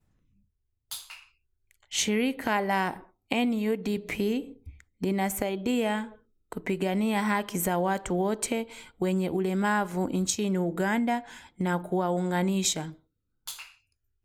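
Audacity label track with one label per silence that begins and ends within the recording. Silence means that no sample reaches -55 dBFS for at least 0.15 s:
1.290000	1.710000	silence
3.100000	3.300000	silence
4.810000	5.010000	silence
6.200000	6.520000	silence
12.990000	13.470000	silence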